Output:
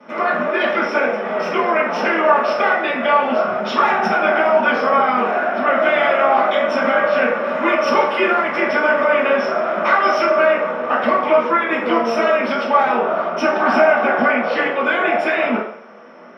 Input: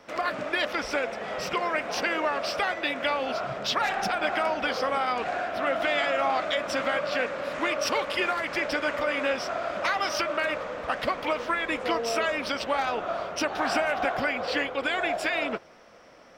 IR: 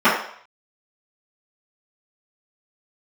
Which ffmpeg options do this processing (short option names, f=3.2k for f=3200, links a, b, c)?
-filter_complex "[0:a]equalizer=f=360:t=o:w=1.3:g=5[a];[1:a]atrim=start_sample=2205[b];[a][b]afir=irnorm=-1:irlink=0,volume=-15.5dB"